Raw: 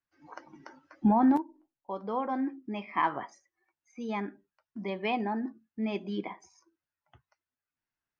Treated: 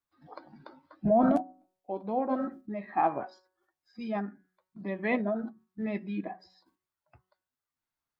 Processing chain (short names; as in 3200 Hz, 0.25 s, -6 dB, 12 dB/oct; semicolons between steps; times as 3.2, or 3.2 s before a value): de-hum 185.5 Hz, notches 13; dynamic EQ 770 Hz, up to +5 dB, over -44 dBFS, Q 2.6; formant shift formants -4 st